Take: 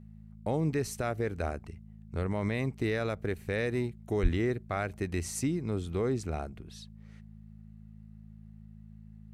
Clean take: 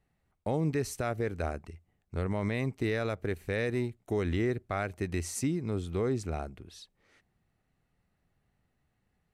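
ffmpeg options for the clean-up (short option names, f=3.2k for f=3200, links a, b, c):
-filter_complex "[0:a]bandreject=f=53.6:t=h:w=4,bandreject=f=107.2:t=h:w=4,bandreject=f=160.8:t=h:w=4,bandreject=f=214.4:t=h:w=4,asplit=3[a][b][c];[a]afade=t=out:st=4.22:d=0.02[d];[b]highpass=f=140:w=0.5412,highpass=f=140:w=1.3066,afade=t=in:st=4.22:d=0.02,afade=t=out:st=4.34:d=0.02[e];[c]afade=t=in:st=4.34:d=0.02[f];[d][e][f]amix=inputs=3:normalize=0"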